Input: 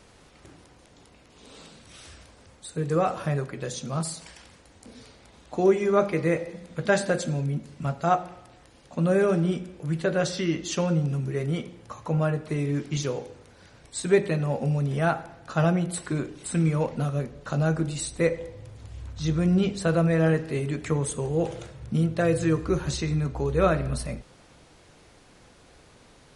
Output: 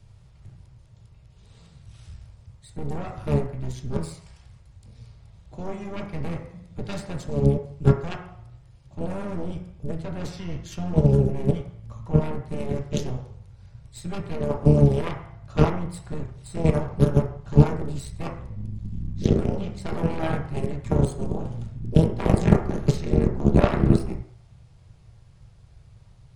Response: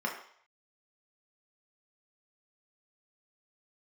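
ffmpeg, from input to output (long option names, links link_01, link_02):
-filter_complex "[0:a]lowshelf=frequency=170:width_type=q:width=3:gain=13,aeval=exprs='0.596*(cos(1*acos(clip(val(0)/0.596,-1,1)))-cos(1*PI/2))+0.237*(cos(3*acos(clip(val(0)/0.596,-1,1)))-cos(3*PI/2))+0.119*(cos(4*acos(clip(val(0)/0.596,-1,1)))-cos(4*PI/2))+0.0841*(cos(6*acos(clip(val(0)/0.596,-1,1)))-cos(6*PI/2))+0.00596*(cos(7*acos(clip(val(0)/0.596,-1,1)))-cos(7*PI/2))':channel_layout=same,acrossover=split=180|3000[link_01][link_02][link_03];[link_01]acompressor=threshold=-19dB:ratio=6[link_04];[link_04][link_02][link_03]amix=inputs=3:normalize=0,asplit=2[link_05][link_06];[link_06]asetrate=22050,aresample=44100,atempo=2,volume=-7dB[link_07];[link_05][link_07]amix=inputs=2:normalize=0,asplit=2[link_08][link_09];[1:a]atrim=start_sample=2205,asetrate=43659,aresample=44100[link_10];[link_09][link_10]afir=irnorm=-1:irlink=0,volume=-10.5dB[link_11];[link_08][link_11]amix=inputs=2:normalize=0,volume=2dB"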